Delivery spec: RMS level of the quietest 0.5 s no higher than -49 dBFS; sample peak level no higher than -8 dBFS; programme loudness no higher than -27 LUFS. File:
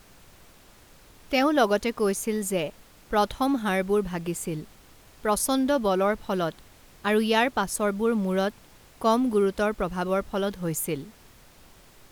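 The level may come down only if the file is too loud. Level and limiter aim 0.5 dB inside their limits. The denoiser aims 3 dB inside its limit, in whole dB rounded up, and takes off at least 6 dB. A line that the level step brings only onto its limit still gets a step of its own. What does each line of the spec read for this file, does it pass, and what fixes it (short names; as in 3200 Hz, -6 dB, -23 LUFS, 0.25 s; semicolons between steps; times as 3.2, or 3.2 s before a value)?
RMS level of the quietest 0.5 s -53 dBFS: OK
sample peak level -8.5 dBFS: OK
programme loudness -26.0 LUFS: fail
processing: gain -1.5 dB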